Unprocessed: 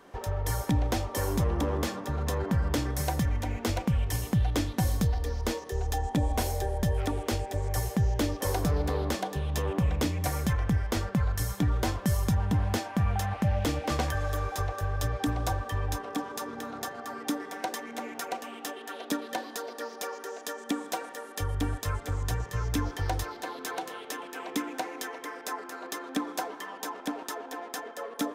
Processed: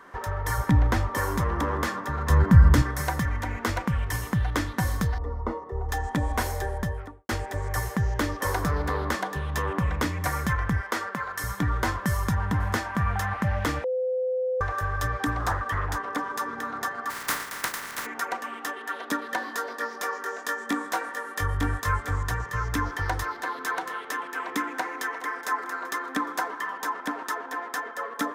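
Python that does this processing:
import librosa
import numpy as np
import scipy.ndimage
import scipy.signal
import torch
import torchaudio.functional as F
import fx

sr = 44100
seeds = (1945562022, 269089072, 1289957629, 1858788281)

y = fx.bass_treble(x, sr, bass_db=7, treble_db=-3, at=(0.58, 1.18))
y = fx.bass_treble(y, sr, bass_db=14, treble_db=3, at=(2.3, 2.82))
y = fx.savgol(y, sr, points=65, at=(5.18, 5.89))
y = fx.studio_fade_out(y, sr, start_s=6.66, length_s=0.63)
y = fx.highpass(y, sr, hz=320.0, slope=12, at=(10.81, 11.44))
y = fx.echo_throw(y, sr, start_s=12.16, length_s=0.46, ms=440, feedback_pct=15, wet_db=-17.5)
y = fx.doppler_dist(y, sr, depth_ms=0.43, at=(15.39, 16.19))
y = fx.spec_flatten(y, sr, power=0.21, at=(17.09, 18.05), fade=0.02)
y = fx.doubler(y, sr, ms=21.0, db=-6, at=(19.39, 22.23))
y = fx.echo_throw(y, sr, start_s=24.69, length_s=0.73, ms=420, feedback_pct=60, wet_db=-15.5)
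y = fx.edit(y, sr, fx.bleep(start_s=13.84, length_s=0.77, hz=511.0, db=-23.5), tone=tone)
y = fx.band_shelf(y, sr, hz=1400.0, db=10.0, octaves=1.3)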